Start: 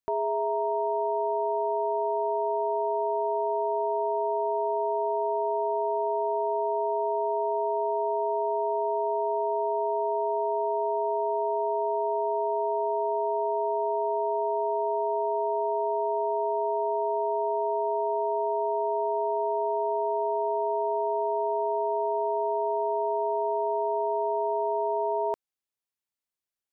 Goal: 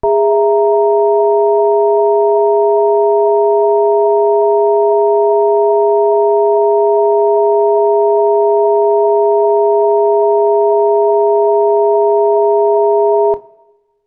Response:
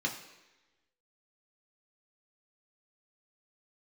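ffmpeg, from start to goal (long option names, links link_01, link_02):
-filter_complex "[0:a]aemphasis=mode=reproduction:type=riaa,atempo=1.9,acontrast=48,asplit=2[link_01][link_02];[1:a]atrim=start_sample=2205,adelay=24[link_03];[link_02][link_03]afir=irnorm=-1:irlink=0,volume=-17.5dB[link_04];[link_01][link_04]amix=inputs=2:normalize=0,volume=8.5dB"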